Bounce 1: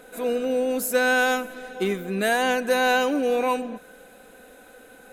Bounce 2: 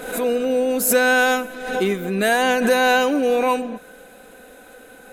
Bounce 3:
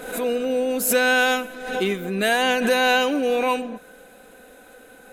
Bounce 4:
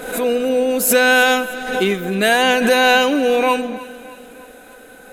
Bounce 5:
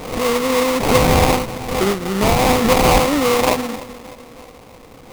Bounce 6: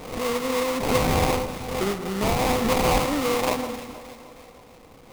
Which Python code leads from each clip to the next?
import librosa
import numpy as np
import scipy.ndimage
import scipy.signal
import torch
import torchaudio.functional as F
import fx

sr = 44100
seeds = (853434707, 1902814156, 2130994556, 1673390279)

y1 = fx.pre_swell(x, sr, db_per_s=64.0)
y1 = y1 * 10.0 ** (4.0 / 20.0)
y2 = fx.dynamic_eq(y1, sr, hz=3000.0, q=1.5, threshold_db=-37.0, ratio=4.0, max_db=6)
y2 = y2 * 10.0 ** (-3.0 / 20.0)
y3 = fx.echo_feedback(y2, sr, ms=307, feedback_pct=52, wet_db=-18.0)
y3 = y3 * 10.0 ** (5.5 / 20.0)
y4 = fx.sample_hold(y3, sr, seeds[0], rate_hz=1600.0, jitter_pct=20)
y5 = fx.echo_alternate(y4, sr, ms=155, hz=1400.0, feedback_pct=68, wet_db=-11.5)
y5 = y5 * 10.0 ** (-8.0 / 20.0)